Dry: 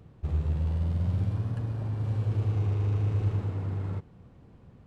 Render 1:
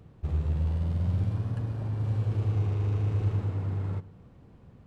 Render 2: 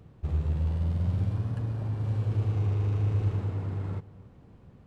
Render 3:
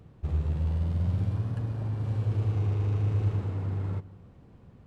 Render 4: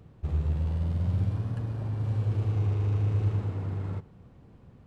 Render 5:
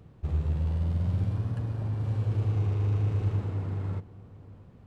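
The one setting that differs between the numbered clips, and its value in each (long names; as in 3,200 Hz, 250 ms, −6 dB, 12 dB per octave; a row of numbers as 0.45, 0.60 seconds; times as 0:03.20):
delay with a low-pass on its return, delay time: 103, 272, 164, 67, 628 milliseconds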